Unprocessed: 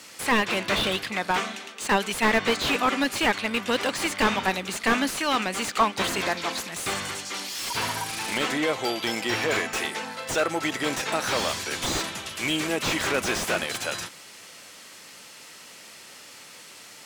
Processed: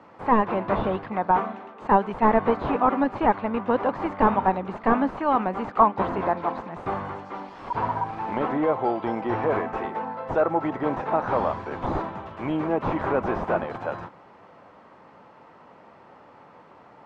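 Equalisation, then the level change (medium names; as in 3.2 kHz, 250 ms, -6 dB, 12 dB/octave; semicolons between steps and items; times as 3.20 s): resonant low-pass 940 Hz, resonance Q 2.1; bass shelf 250 Hz +5 dB; 0.0 dB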